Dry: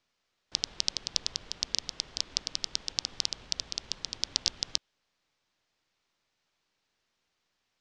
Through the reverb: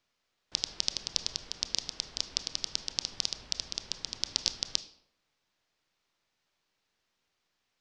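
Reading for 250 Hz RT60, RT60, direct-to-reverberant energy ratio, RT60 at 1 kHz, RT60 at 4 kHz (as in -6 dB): 0.75 s, 0.70 s, 11.5 dB, 0.70 s, 0.45 s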